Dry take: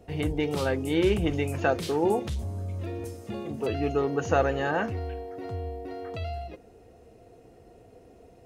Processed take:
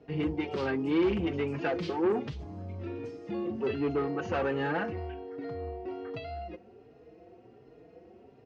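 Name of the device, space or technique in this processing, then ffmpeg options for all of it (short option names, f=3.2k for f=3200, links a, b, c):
barber-pole flanger into a guitar amplifier: -filter_complex "[0:a]asplit=2[a][b];[b]adelay=4.5,afreqshift=1.3[c];[a][c]amix=inputs=2:normalize=1,asoftclip=type=tanh:threshold=-25.5dB,highpass=94,equalizer=f=96:t=q:w=4:g=-5,equalizer=f=340:t=q:w=4:g=4,equalizer=f=630:t=q:w=4:g=-4,equalizer=f=3.7k:t=q:w=4:g=-6,lowpass=f=4.5k:w=0.5412,lowpass=f=4.5k:w=1.3066,volume=2dB"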